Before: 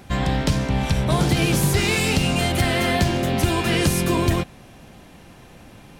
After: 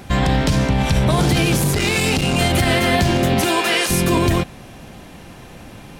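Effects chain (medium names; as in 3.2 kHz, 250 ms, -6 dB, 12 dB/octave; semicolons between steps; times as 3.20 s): 3.41–3.89 s: high-pass 270 Hz -> 710 Hz 12 dB/octave; peak limiter -14 dBFS, peak gain reduction 6 dB; 1.57–2.38 s: transformer saturation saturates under 230 Hz; trim +6.5 dB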